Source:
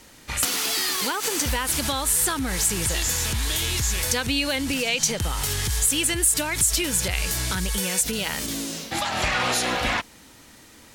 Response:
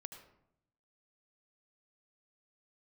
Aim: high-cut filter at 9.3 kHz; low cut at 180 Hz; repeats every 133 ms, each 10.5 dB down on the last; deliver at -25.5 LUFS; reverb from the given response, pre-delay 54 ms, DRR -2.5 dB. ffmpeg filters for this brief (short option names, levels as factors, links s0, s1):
-filter_complex "[0:a]highpass=180,lowpass=9300,aecho=1:1:133|266|399:0.299|0.0896|0.0269,asplit=2[s0][s1];[1:a]atrim=start_sample=2205,adelay=54[s2];[s1][s2]afir=irnorm=-1:irlink=0,volume=2.24[s3];[s0][s3]amix=inputs=2:normalize=0,volume=0.501"